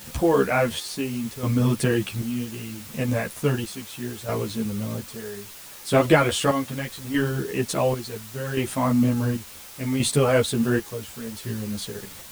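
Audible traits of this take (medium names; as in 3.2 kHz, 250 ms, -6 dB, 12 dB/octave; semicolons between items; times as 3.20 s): chopped level 0.7 Hz, depth 65%, duty 55%; a quantiser's noise floor 8-bit, dither triangular; a shimmering, thickened sound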